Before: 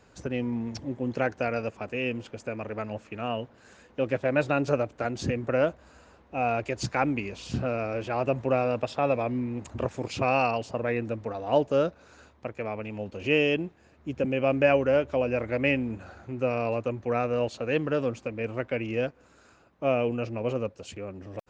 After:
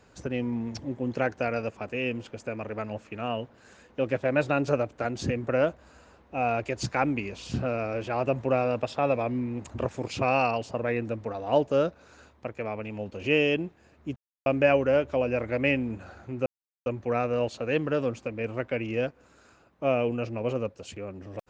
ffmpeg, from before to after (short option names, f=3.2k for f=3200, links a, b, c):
-filter_complex "[0:a]asplit=5[a][b][c][d][e];[a]atrim=end=14.16,asetpts=PTS-STARTPTS,afade=t=out:st=14.156:d=0.004:c=hsin[f];[b]atrim=start=14.16:end=14.46,asetpts=PTS-STARTPTS,volume=0[g];[c]atrim=start=14.46:end=16.46,asetpts=PTS-STARTPTS,afade=t=in:d=0.004:c=hsin,afade=t=out:st=1.996:d=0.004:c=hsin[h];[d]atrim=start=16.46:end=16.86,asetpts=PTS-STARTPTS,volume=0[i];[e]atrim=start=16.86,asetpts=PTS-STARTPTS,afade=t=in:d=0.004:c=hsin[j];[f][g][h][i][j]concat=n=5:v=0:a=1"